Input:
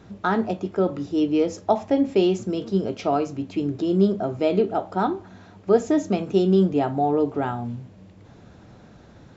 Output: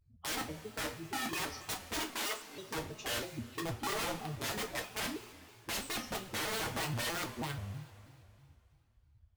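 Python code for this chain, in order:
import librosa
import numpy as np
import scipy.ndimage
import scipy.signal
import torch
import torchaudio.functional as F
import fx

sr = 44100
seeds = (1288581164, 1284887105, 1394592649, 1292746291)

y = fx.bin_expand(x, sr, power=2.0)
y = (np.mod(10.0 ** (25.5 / 20.0) * y + 1.0, 2.0) - 1.0) / 10.0 ** (25.5 / 20.0)
y = fx.highpass(y, sr, hz=fx.line((2.0, 170.0), (2.54, 510.0)), slope=24, at=(2.0, 2.54), fade=0.02)
y = fx.rev_double_slope(y, sr, seeds[0], early_s=0.26, late_s=2.6, knee_db=-18, drr_db=0.5)
y = fx.vibrato_shape(y, sr, shape='square', rate_hz=3.1, depth_cents=250.0)
y = y * 10.0 ** (-8.0 / 20.0)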